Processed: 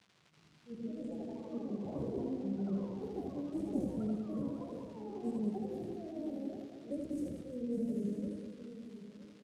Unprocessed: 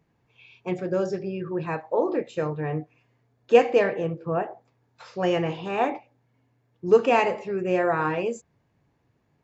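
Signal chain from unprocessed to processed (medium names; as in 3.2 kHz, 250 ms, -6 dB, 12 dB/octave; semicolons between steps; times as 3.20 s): comb filter that takes the minimum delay 2.5 ms; level-controlled noise filter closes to 320 Hz, open at -21.5 dBFS; inverse Chebyshev band-stop 890–2300 Hz, stop band 80 dB; peaking EQ 600 Hz -6 dB 2.2 oct; slow attack 150 ms; crackle 250 per s -52 dBFS; pitch shift +4.5 st; delay 970 ms -13.5 dB; ever faster or slower copies 366 ms, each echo +5 st, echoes 3, each echo -6 dB; band-pass 170–4800 Hz; on a send: reverse bouncing-ball echo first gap 80 ms, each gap 1.4×, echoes 5; on the sum: trim +4.5 dB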